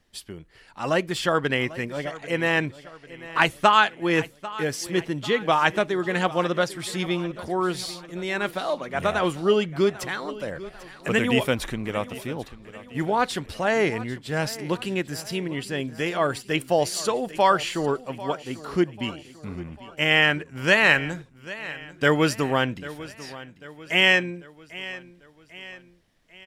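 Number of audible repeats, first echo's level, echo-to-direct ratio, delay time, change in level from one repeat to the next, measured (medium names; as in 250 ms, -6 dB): 3, -17.0 dB, -16.0 dB, 794 ms, -6.0 dB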